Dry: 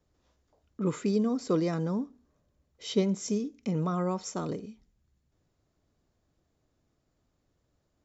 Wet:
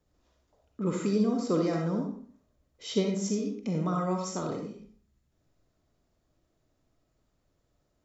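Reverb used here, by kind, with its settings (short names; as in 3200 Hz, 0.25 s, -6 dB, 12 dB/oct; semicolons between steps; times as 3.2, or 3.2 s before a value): digital reverb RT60 0.51 s, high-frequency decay 0.7×, pre-delay 20 ms, DRR 1.5 dB; gain -1 dB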